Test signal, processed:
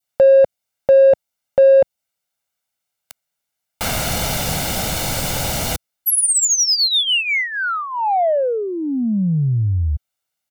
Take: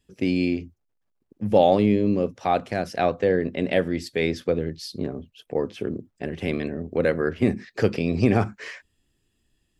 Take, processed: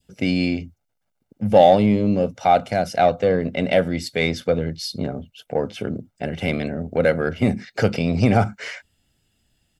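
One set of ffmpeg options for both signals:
-filter_complex "[0:a]lowshelf=f=64:g=-10.5,aecho=1:1:1.4:0.56,adynamicequalizer=threshold=0.0158:dfrequency=1500:dqfactor=1:tfrequency=1500:tqfactor=1:attack=5:release=100:ratio=0.375:range=4:mode=cutabove:tftype=bell,asplit=2[a][b];[b]asoftclip=type=tanh:threshold=-20dB,volume=-6.5dB[c];[a][c]amix=inputs=2:normalize=0,volume=2dB"

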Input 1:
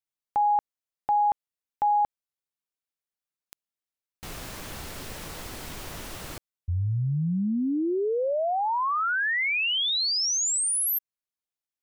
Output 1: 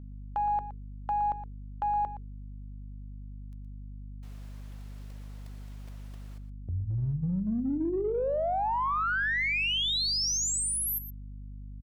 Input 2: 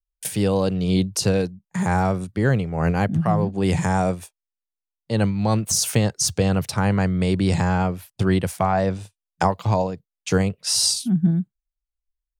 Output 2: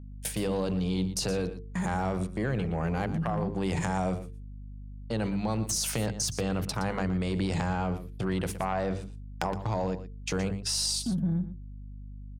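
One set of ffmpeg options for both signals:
-filter_complex "[0:a]agate=range=-18dB:threshold=-36dB:ratio=16:release=49:detection=peak,highpass=f=93:p=1,highshelf=f=5.9k:g=-5,bandreject=f=50:t=h:w=6,bandreject=f=100:t=h:w=6,bandreject=f=150:t=h:w=6,bandreject=f=200:t=h:w=6,bandreject=f=250:t=h:w=6,bandreject=f=300:t=h:w=6,bandreject=f=350:t=h:w=6,bandreject=f=400:t=h:w=6,bandreject=f=450:t=h:w=6,acompressor=threshold=-26dB:ratio=6:attack=1.5:release=23:knee=1:detection=peak,aeval=exprs='0.282*(cos(1*acos(clip(val(0)/0.282,-1,1)))-cos(1*PI/2))+0.0398*(cos(2*acos(clip(val(0)/0.282,-1,1)))-cos(2*PI/2))+0.0178*(cos(4*acos(clip(val(0)/0.282,-1,1)))-cos(4*PI/2))+0.00562*(cos(7*acos(clip(val(0)/0.282,-1,1)))-cos(7*PI/2))':c=same,aeval=exprs='val(0)+0.00794*(sin(2*PI*50*n/s)+sin(2*PI*2*50*n/s)/2+sin(2*PI*3*50*n/s)/3+sin(2*PI*4*50*n/s)/4+sin(2*PI*5*50*n/s)/5)':c=same,asplit=2[a][b];[b]aecho=0:1:118:0.224[c];[a][c]amix=inputs=2:normalize=0"

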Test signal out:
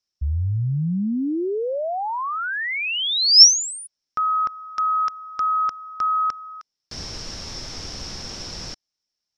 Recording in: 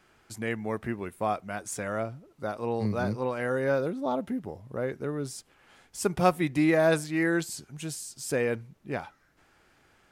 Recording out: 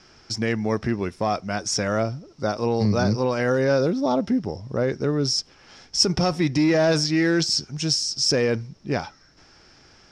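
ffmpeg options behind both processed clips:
-filter_complex "[0:a]lowshelf=f=490:g=5.5,asplit=2[a][b];[b]aeval=exprs='0.133*(abs(mod(val(0)/0.133+3,4)-2)-1)':c=same,volume=-11dB[c];[a][c]amix=inputs=2:normalize=0,alimiter=limit=-17dB:level=0:latency=1:release=26,lowpass=f=5.4k:t=q:w=13,volume=3.5dB"

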